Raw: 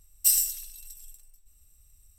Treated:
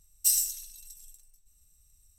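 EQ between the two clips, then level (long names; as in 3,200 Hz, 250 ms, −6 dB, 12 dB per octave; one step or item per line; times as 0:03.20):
thirty-one-band graphic EQ 160 Hz +7 dB, 4,000 Hz +4 dB, 6,300 Hz +10 dB, 10,000 Hz +5 dB
−5.5 dB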